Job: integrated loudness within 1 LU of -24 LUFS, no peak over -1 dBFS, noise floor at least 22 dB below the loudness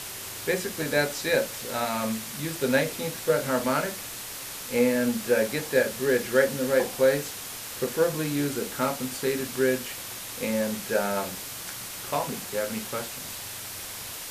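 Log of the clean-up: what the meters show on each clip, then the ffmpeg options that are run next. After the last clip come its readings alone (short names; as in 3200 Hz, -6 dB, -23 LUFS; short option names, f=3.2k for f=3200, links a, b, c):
noise floor -38 dBFS; noise floor target -50 dBFS; loudness -27.5 LUFS; peak -8.0 dBFS; loudness target -24.0 LUFS
-> -af "afftdn=nr=12:nf=-38"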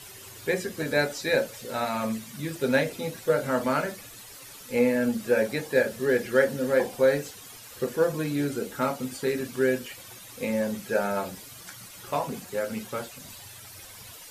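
noise floor -46 dBFS; noise floor target -50 dBFS
-> -af "afftdn=nr=6:nf=-46"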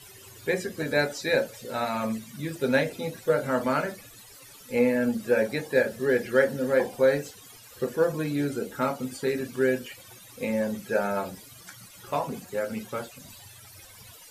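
noise floor -49 dBFS; noise floor target -50 dBFS
-> -af "afftdn=nr=6:nf=-49"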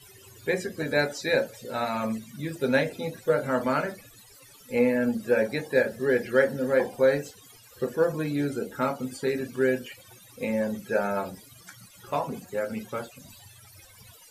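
noise floor -53 dBFS; loudness -27.5 LUFS; peak -8.0 dBFS; loudness target -24.0 LUFS
-> -af "volume=3.5dB"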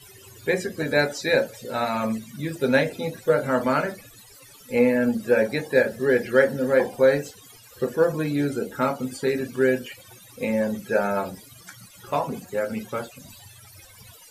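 loudness -24.0 LUFS; peak -4.5 dBFS; noise floor -49 dBFS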